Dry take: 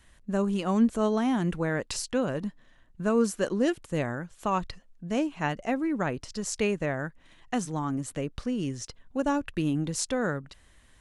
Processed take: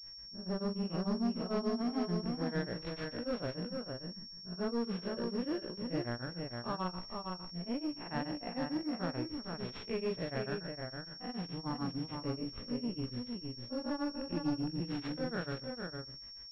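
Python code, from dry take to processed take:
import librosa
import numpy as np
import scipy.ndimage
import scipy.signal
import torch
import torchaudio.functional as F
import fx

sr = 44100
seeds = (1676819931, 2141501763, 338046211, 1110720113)

y = fx.spec_blur(x, sr, span_ms=105.0)
y = fx.stretch_grains(y, sr, factor=1.5, grain_ms=101.0)
y = fx.granulator(y, sr, seeds[0], grain_ms=166.0, per_s=6.8, spray_ms=27.0, spread_st=0)
y = 10.0 ** (-29.5 / 20.0) * np.tanh(y / 10.0 ** (-29.5 / 20.0))
y = y + 10.0 ** (-4.5 / 20.0) * np.pad(y, (int(460 * sr / 1000.0), 0))[:len(y)]
y = fx.pwm(y, sr, carrier_hz=5500.0)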